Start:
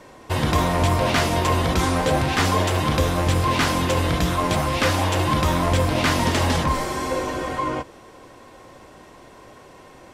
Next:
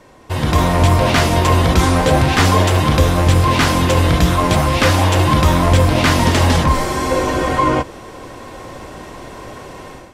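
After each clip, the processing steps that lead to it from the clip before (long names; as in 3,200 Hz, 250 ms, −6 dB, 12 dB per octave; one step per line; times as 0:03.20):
low-shelf EQ 130 Hz +5 dB
automatic gain control gain up to 13 dB
level −1 dB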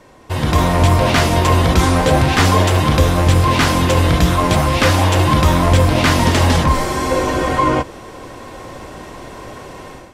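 no processing that can be heard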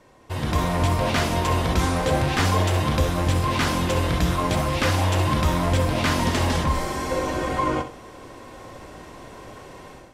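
flutter between parallel walls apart 10.9 metres, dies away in 0.36 s
level −8.5 dB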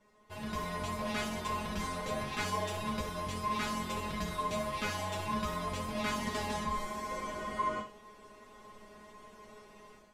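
tuned comb filter 210 Hz, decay 0.16 s, harmonics all, mix 100%
level −2.5 dB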